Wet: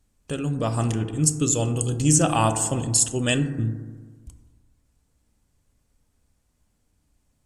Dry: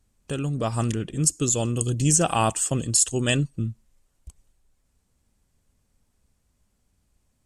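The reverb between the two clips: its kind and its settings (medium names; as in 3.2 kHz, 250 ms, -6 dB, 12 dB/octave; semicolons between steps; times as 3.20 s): FDN reverb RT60 1.5 s, low-frequency decay 1×, high-frequency decay 0.25×, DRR 7.5 dB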